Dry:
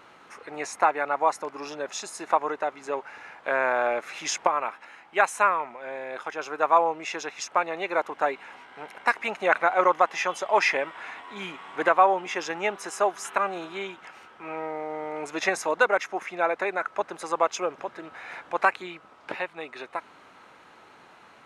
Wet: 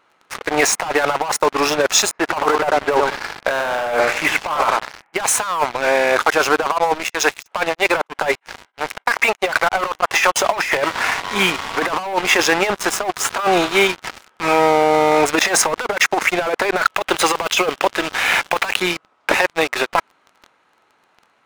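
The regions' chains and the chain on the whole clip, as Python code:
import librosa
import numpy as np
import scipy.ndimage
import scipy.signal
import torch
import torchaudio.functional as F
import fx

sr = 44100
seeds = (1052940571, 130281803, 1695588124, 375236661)

y = fx.chain(x, sr, fx.lowpass(hz=2400.0, slope=24),
    fx.echo_feedback(ms=96, feedback_pct=22, wet_db=-9.0), at=(2.11, 5.24))
y = fx.chain(y, sr, fx.bessel_highpass(hz=330.0, order=2),
    fx.tremolo_abs(hz=3.1), at=(6.63, 10.36))
y = fx.chain(y, sr, fx.law_mismatch(coded='A'),
    fx.lowpass(hz=8100.0, slope=12), at=(12.13, 13.34))
y = fx.chain(y, sr, fx.block_float(bits=7),
    fx.peak_eq(hz=3100.0, db=12.0, octaves=0.68), at=(16.76, 18.8))
y = fx.low_shelf(y, sr, hz=340.0, db=-5.0)
y = fx.leveller(y, sr, passes=5)
y = fx.over_compress(y, sr, threshold_db=-15.0, ratio=-0.5)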